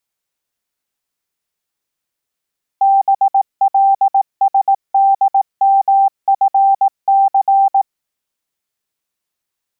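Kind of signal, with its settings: Morse "BLSDMFC" 18 wpm 785 Hz -7.5 dBFS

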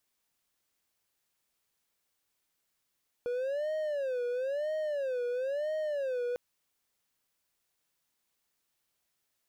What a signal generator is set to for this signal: siren wail 484–624 Hz 1 per s triangle -28 dBFS 3.10 s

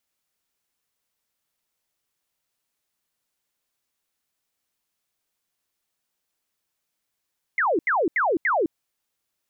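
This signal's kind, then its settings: burst of laser zaps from 2.2 kHz, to 290 Hz, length 0.21 s sine, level -18.5 dB, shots 4, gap 0.08 s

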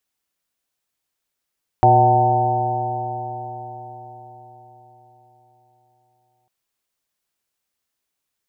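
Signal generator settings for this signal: stretched partials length 4.65 s, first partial 119 Hz, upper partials -13.5/-4/-12/-4/6/-3 dB, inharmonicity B 0.0032, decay 4.87 s, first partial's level -16 dB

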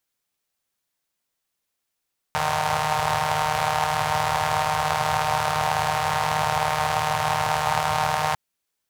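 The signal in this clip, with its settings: four-cylinder engine model, steady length 6.00 s, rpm 4600, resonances 110/810 Hz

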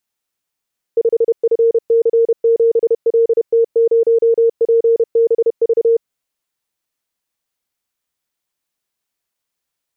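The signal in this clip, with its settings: Morse "5FC7LT0PBV" 31 wpm 460 Hz -8.5 dBFS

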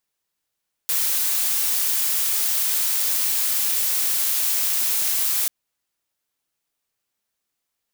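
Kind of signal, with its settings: noise blue, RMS -21.5 dBFS 4.59 s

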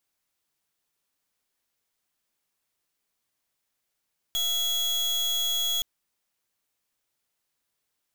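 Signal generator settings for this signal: pulse 3.34 kHz, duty 36% -26.5 dBFS 1.47 s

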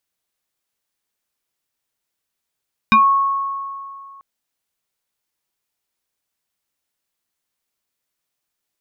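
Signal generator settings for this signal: FM tone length 1.29 s, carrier 1.1 kHz, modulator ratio 1.2, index 1.7, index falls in 0.18 s exponential, decay 2.39 s, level -7 dB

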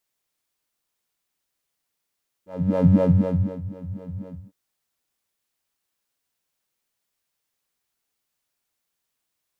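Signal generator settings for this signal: synth patch with filter wobble F#3, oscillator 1 square, interval -12 st, sub 0 dB, noise -8.5 dB, filter bandpass, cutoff 150 Hz, Q 4, filter envelope 1 oct, filter decay 1.14 s, filter sustain 45%, attack 432 ms, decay 0.72 s, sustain -20 dB, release 0.25 s, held 1.81 s, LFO 4 Hz, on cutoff 1.2 oct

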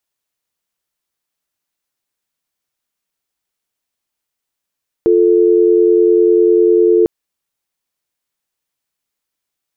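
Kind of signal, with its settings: call progress tone dial tone, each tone -10 dBFS 2.00 s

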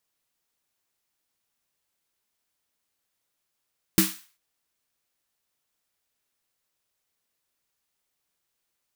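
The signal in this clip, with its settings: snare drum length 0.39 s, tones 190 Hz, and 320 Hz, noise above 1.1 kHz, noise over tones -2.5 dB, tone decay 0.22 s, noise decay 0.40 s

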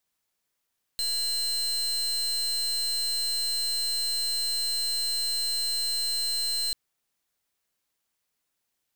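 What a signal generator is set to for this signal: pulse 4.12 kHz, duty 36% -28 dBFS 5.74 s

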